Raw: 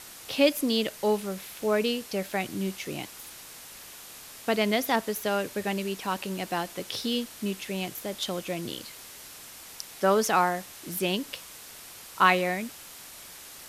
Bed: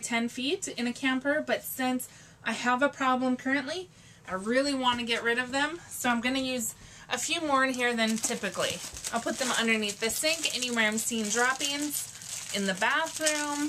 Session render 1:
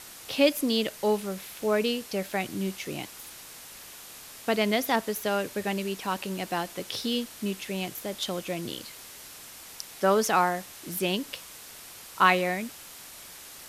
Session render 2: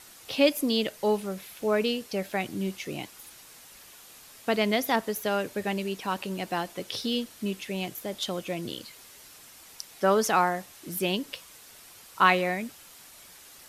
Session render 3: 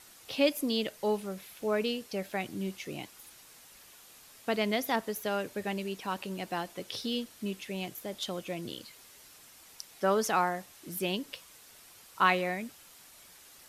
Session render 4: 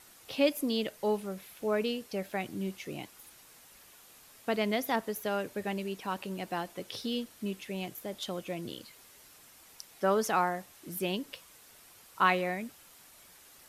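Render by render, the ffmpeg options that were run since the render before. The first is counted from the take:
ffmpeg -i in.wav -af anull out.wav
ffmpeg -i in.wav -af "afftdn=noise_reduction=6:noise_floor=-46" out.wav
ffmpeg -i in.wav -af "volume=-4.5dB" out.wav
ffmpeg -i in.wav -af "equalizer=frequency=4900:width=0.56:gain=-3" out.wav

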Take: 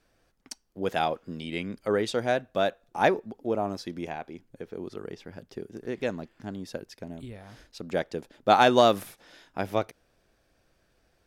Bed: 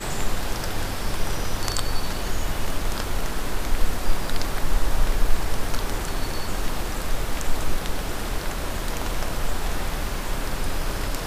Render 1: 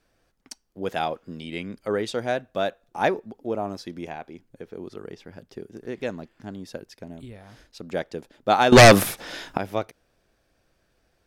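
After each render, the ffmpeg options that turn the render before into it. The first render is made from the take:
ffmpeg -i in.wav -filter_complex "[0:a]asettb=1/sr,asplit=3[link_01][link_02][link_03];[link_01]atrim=end=8.724[link_04];[link_02]atrim=start=8.72:end=9.58,asetpts=PTS-STARTPTS,afade=type=in:duration=0.004:curve=qsin,afade=type=out:start_time=0.856:duration=0.004:curve=qsin,aeval=exprs='0.531*sin(PI/2*4.47*val(0)/0.531)':channel_layout=same[link_05];[link_03]atrim=start=9.576[link_06];[link_04][link_05]acrossfade=duration=0.004:curve1=hsin:curve2=qsin[link_07];[link_07][link_06]acrossfade=duration=0.004:curve1=qsin:curve2=hsin" out.wav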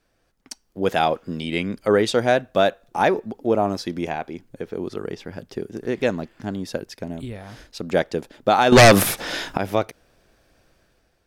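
ffmpeg -i in.wav -af "alimiter=limit=-14dB:level=0:latency=1:release=118,dynaudnorm=framelen=230:gausssize=5:maxgain=8.5dB" out.wav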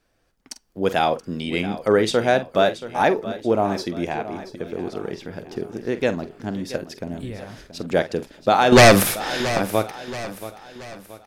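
ffmpeg -i in.wav -filter_complex "[0:a]asplit=2[link_01][link_02];[link_02]adelay=46,volume=-13dB[link_03];[link_01][link_03]amix=inputs=2:normalize=0,aecho=1:1:678|1356|2034|2712:0.2|0.0878|0.0386|0.017" out.wav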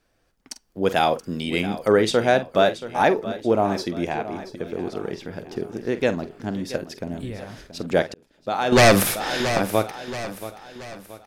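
ffmpeg -i in.wav -filter_complex "[0:a]asettb=1/sr,asplit=3[link_01][link_02][link_03];[link_01]atrim=end=0.964[link_04];[link_02]atrim=start=0.96:end=1.91,asetpts=PTS-STARTPTS,afade=type=in:duration=0.004:curve=qsin,afade=type=out:start_time=0.946:duration=0.004:curve=qsin,highshelf=frequency=7800:gain=8.5[link_05];[link_03]atrim=start=1.906[link_06];[link_04][link_05]acrossfade=duration=0.004:curve1=hsin:curve2=qsin[link_07];[link_07][link_06]acrossfade=duration=0.004:curve1=qsin:curve2=hsin,asplit=2[link_08][link_09];[link_08]atrim=end=8.14,asetpts=PTS-STARTPTS,afade=type=out:start_time=8.136:duration=0.004:curve=hsin[link_10];[link_09]atrim=start=8.14,asetpts=PTS-STARTPTS,afade=type=in:duration=1.04[link_11];[link_10][link_11]concat=n=2:v=0:a=1" out.wav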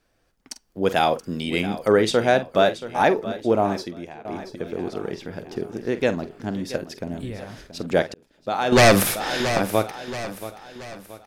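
ffmpeg -i in.wav -filter_complex "[0:a]asplit=2[link_01][link_02];[link_01]atrim=end=4.25,asetpts=PTS-STARTPTS,afade=type=out:start_time=3.68:duration=0.57:curve=qua:silence=0.188365[link_03];[link_02]atrim=start=4.25,asetpts=PTS-STARTPTS,afade=type=in:duration=0.004:curve=hsin:silence=0.188365[link_04];[link_03][link_04]concat=n=2:v=0:a=1" out.wav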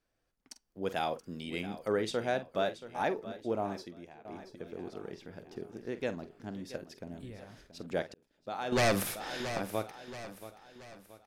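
ffmpeg -i in.wav -af "volume=-13.5dB" out.wav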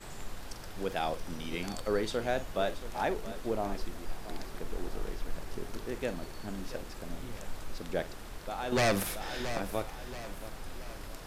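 ffmpeg -i in.wav -i bed.wav -filter_complex "[1:a]volume=-17dB[link_01];[0:a][link_01]amix=inputs=2:normalize=0" out.wav

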